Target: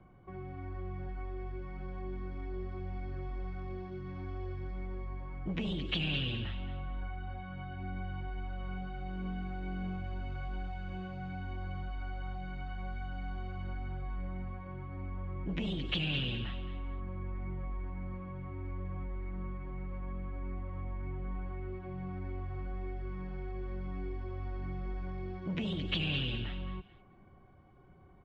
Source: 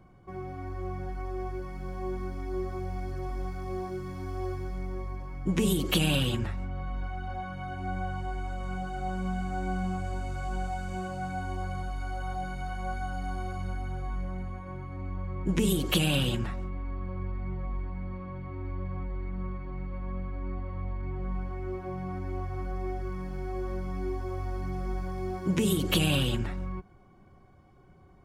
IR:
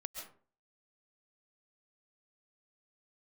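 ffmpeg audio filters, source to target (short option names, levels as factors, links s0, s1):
-filter_complex "[0:a]lowpass=f=3400:w=0.5412,lowpass=f=3400:w=1.3066,acrossover=split=290|1900[s0][s1][s2];[s0]asoftclip=type=tanh:threshold=0.0316[s3];[s1]acompressor=threshold=0.00501:ratio=6[s4];[s2]aecho=1:1:217|434|651:0.355|0.103|0.0298[s5];[s3][s4][s5]amix=inputs=3:normalize=0,volume=0.75"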